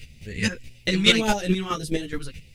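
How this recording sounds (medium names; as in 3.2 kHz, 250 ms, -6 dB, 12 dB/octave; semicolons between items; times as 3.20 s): phasing stages 2, 1.7 Hz, lowest notch 590–1200 Hz; a quantiser's noise floor 12-bit, dither none; chopped level 4.7 Hz, depth 65%, duty 20%; a shimmering, thickened sound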